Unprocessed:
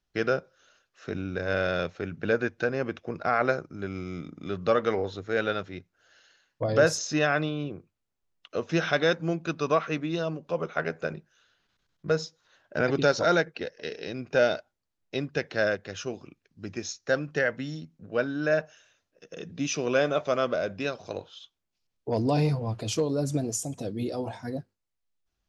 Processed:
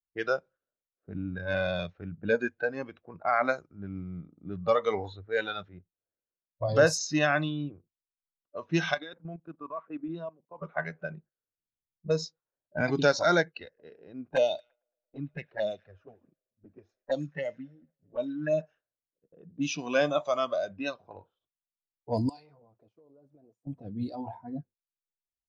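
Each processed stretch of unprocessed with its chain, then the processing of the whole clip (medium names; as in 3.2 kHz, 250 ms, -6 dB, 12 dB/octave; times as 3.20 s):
8.94–10.62 s: high-pass 180 Hz + treble shelf 7.3 kHz -8.5 dB + level held to a coarse grid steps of 16 dB
14.36–18.60 s: touch-sensitive flanger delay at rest 10.7 ms, full sweep at -23 dBFS + feedback echo behind a high-pass 112 ms, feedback 85%, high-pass 1.5 kHz, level -19 dB
22.29–23.67 s: high-pass 1.3 kHz 6 dB/octave + compression 10:1, threshold -39 dBFS
whole clip: gate -50 dBFS, range -9 dB; level-controlled noise filter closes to 370 Hz, open at -22.5 dBFS; spectral noise reduction 14 dB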